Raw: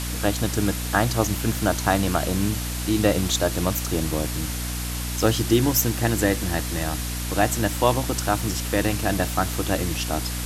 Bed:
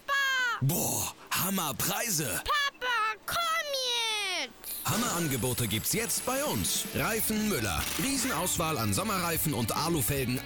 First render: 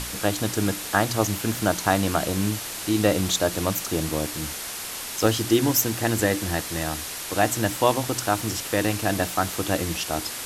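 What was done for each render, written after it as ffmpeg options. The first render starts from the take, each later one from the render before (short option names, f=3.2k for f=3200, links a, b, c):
-af "bandreject=f=60:t=h:w=6,bandreject=f=120:t=h:w=6,bandreject=f=180:t=h:w=6,bandreject=f=240:t=h:w=6,bandreject=f=300:t=h:w=6"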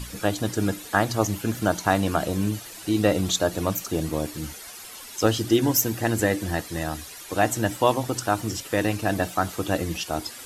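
-af "afftdn=nr=12:nf=-34"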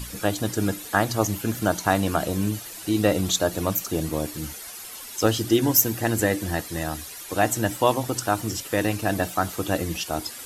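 -af "highshelf=f=11k:g=7.5"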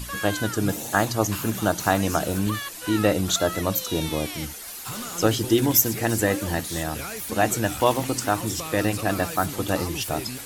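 -filter_complex "[1:a]volume=-5.5dB[a];[0:a][a]amix=inputs=2:normalize=0"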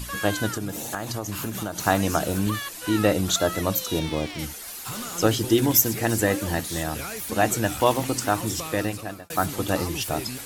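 -filter_complex "[0:a]asettb=1/sr,asplit=3[a][b][c];[a]atrim=end=0.544[d];[b]atrim=start=0.54:end=1.78,asetpts=PTS-STARTPTS,afade=t=in:d=0.004:c=qsin,afade=t=out:st=1.236:d=0.004:c=qsin,acompressor=threshold=-25dB:ratio=8:attack=3.2:release=140:knee=1:detection=peak[e];[c]atrim=start=1.776[f];[d][e]acrossfade=d=0.004:c1=hsin:c2=qsin[g];[g][f]acrossfade=d=0.004:c1=qsin:c2=hsin,asettb=1/sr,asplit=3[h][i][j];[h]atrim=end=3.994[k];[i]atrim=start=3.99:end=4.39,asetpts=PTS-STARTPTS,afade=t=in:d=0.004:c=qsin,afade=t=out:st=0.396:d=0.004:c=qsin,adynamicsmooth=sensitivity=7.5:basefreq=2.6k[l];[j]atrim=start=4.386[m];[k][l]acrossfade=d=0.004:c1=hsin:c2=qsin[n];[n][m]acrossfade=d=0.004:c1=qsin:c2=hsin,asplit=2[o][p];[o]atrim=end=9.3,asetpts=PTS-STARTPTS,afade=t=out:st=8.63:d=0.67[q];[p]atrim=start=9.3,asetpts=PTS-STARTPTS,afade=t=in:d=0.004:c=hsin[r];[q][r]concat=n=2:v=0:a=1"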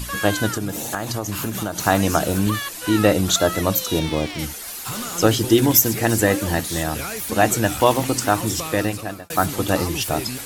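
-af "volume=4.5dB,alimiter=limit=-1dB:level=0:latency=1"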